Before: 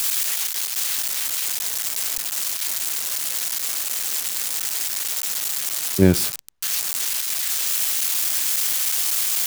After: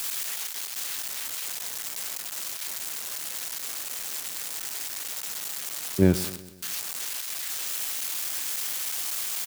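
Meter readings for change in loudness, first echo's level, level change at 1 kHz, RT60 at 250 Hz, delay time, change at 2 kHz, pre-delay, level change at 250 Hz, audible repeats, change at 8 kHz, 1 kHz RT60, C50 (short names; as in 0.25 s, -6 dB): -8.5 dB, -17.0 dB, -5.5 dB, none, 0.123 s, -6.5 dB, none, -4.5 dB, 4, -9.0 dB, none, none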